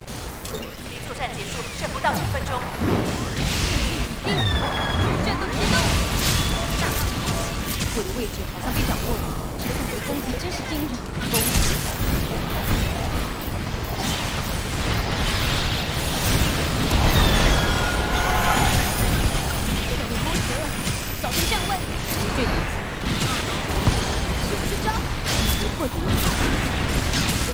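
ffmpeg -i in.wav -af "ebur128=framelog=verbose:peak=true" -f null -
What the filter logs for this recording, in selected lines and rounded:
Integrated loudness:
  I:         -23.6 LUFS
  Threshold: -33.7 LUFS
Loudness range:
  LRA:         5.1 LU
  Threshold: -43.6 LUFS
  LRA low:   -25.8 LUFS
  LRA high:  -20.7 LUFS
True peak:
  Peak:       -5.7 dBFS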